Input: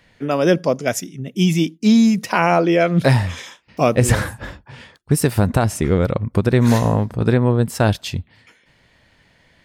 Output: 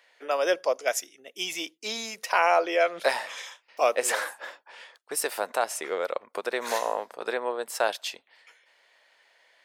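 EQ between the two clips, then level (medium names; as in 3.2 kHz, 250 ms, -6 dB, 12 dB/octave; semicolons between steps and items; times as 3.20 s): high-pass 510 Hz 24 dB/octave; -4.5 dB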